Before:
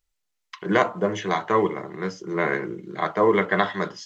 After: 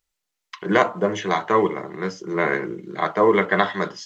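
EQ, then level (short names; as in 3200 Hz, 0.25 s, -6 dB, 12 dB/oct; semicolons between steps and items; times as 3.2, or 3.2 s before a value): low shelf 72 Hz -10 dB; +2.5 dB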